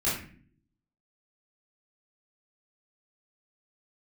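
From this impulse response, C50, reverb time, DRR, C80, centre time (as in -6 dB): 3.5 dB, 0.50 s, -9.5 dB, 8.5 dB, 45 ms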